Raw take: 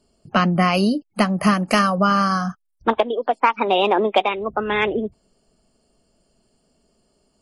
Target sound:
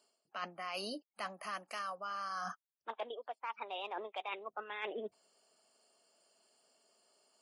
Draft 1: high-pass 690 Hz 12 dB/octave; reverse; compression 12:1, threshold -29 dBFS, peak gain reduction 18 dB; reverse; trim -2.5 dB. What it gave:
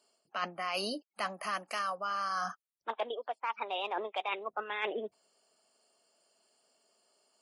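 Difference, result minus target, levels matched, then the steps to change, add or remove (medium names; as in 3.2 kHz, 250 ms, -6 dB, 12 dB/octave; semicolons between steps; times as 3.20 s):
compression: peak gain reduction -6.5 dB
change: compression 12:1, threshold -36 dBFS, peak gain reduction 24.5 dB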